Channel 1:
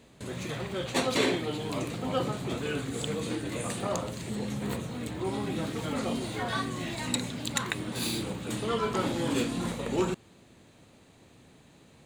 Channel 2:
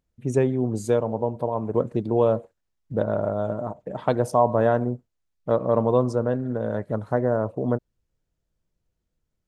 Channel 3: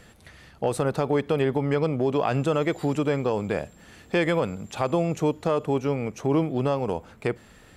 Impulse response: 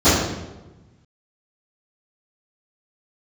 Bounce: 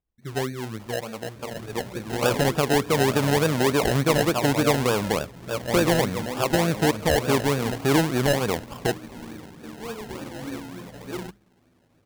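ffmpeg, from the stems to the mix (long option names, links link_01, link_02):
-filter_complex "[0:a]lowpass=frequency=2000:poles=1,bandreject=frequency=50:width_type=h:width=6,bandreject=frequency=100:width_type=h:width=6,bandreject=frequency=150:width_type=h:width=6,bandreject=frequency=200:width_type=h:width=6,asplit=2[link_01][link_02];[link_02]adelay=11.1,afreqshift=-0.33[link_03];[link_01][link_03]amix=inputs=2:normalize=1,adelay=1150,volume=-2.5dB[link_04];[1:a]flanger=delay=1.9:depth=8.9:regen=-37:speed=0.77:shape=triangular,volume=-4.5dB[link_05];[2:a]lowpass=1700,adelay=1600,volume=2.5dB[link_06];[link_04][link_05][link_06]amix=inputs=3:normalize=0,acrusher=samples=30:mix=1:aa=0.000001:lfo=1:lforange=18:lforate=3.4"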